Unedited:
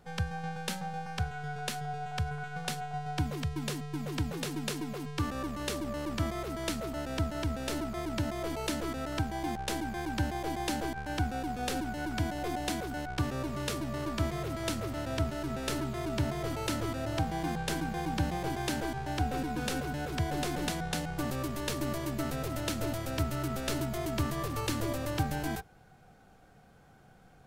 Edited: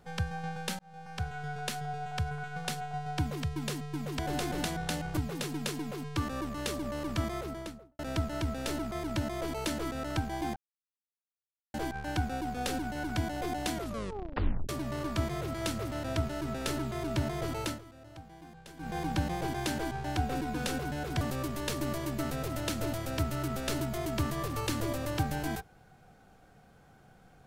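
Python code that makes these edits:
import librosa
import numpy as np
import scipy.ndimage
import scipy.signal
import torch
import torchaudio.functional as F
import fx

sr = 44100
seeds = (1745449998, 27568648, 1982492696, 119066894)

y = fx.studio_fade_out(x, sr, start_s=6.35, length_s=0.66)
y = fx.edit(y, sr, fx.fade_in_span(start_s=0.79, length_s=0.56),
    fx.silence(start_s=9.58, length_s=1.18),
    fx.tape_stop(start_s=12.76, length_s=0.95),
    fx.fade_down_up(start_s=16.59, length_s=1.44, db=-17.5, fade_s=0.24, curve='qsin'),
    fx.move(start_s=20.23, length_s=0.98, to_s=4.19), tone=tone)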